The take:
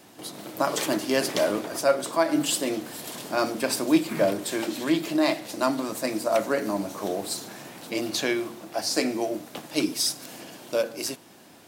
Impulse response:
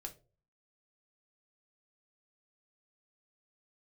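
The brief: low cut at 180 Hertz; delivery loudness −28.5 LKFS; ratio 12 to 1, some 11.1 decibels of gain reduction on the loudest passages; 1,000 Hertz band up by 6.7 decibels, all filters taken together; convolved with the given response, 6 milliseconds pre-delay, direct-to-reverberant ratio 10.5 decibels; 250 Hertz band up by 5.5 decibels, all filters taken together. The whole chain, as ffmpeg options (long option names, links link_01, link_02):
-filter_complex "[0:a]highpass=180,equalizer=frequency=250:width_type=o:gain=7.5,equalizer=frequency=1000:width_type=o:gain=8.5,acompressor=threshold=-21dB:ratio=12,asplit=2[link_01][link_02];[1:a]atrim=start_sample=2205,adelay=6[link_03];[link_02][link_03]afir=irnorm=-1:irlink=0,volume=-7dB[link_04];[link_01][link_04]amix=inputs=2:normalize=0,volume=-1.5dB"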